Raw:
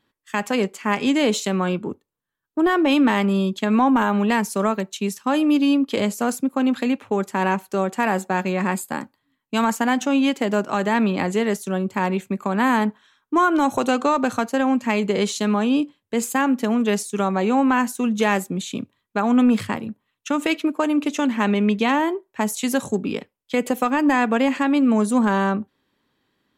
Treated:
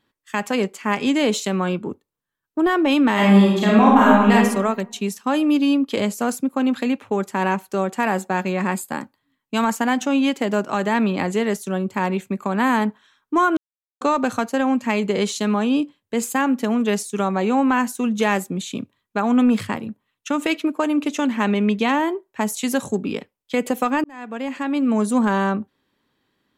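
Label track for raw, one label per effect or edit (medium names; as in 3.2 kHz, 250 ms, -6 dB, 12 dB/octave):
3.130000	4.330000	reverb throw, RT60 0.98 s, DRR -5 dB
13.570000	14.010000	mute
24.040000	25.080000	fade in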